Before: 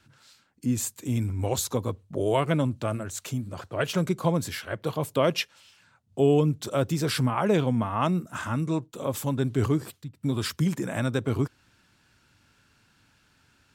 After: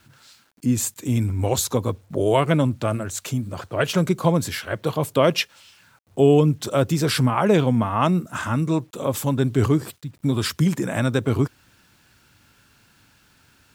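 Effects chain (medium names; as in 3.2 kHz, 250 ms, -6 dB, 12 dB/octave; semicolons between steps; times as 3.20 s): bit crusher 11-bit; trim +5.5 dB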